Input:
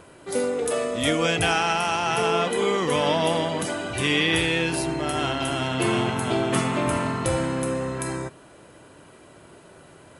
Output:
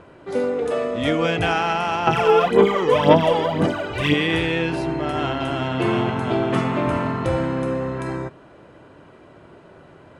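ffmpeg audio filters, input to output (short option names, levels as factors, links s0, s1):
-filter_complex "[0:a]aemphasis=mode=reproduction:type=75kf,adynamicsmooth=sensitivity=2.5:basefreq=7400,asettb=1/sr,asplit=3[s0][s1][s2];[s0]atrim=end=2.074[s3];[s1]atrim=start=2.07:end=4.14,asetpts=PTS-STARTPTS,afade=t=in:d=0.004:c=qsin,afade=t=out:st=2.066:d=0.004:c=qsin,aphaser=in_gain=1:out_gain=1:delay=2.4:decay=0.67:speed=1.9:type=sinusoidal[s4];[s2]atrim=start=4.136[s5];[s3][s4]acrossfade=d=0.004:c1=hsin:c2=qsin[s6];[s6][s5]acrossfade=d=0.004:c1=qsin:c2=hsin,volume=1.41"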